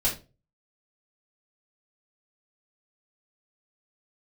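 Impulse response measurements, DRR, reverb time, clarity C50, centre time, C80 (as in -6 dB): -7.5 dB, 0.30 s, 9.0 dB, 23 ms, 16.0 dB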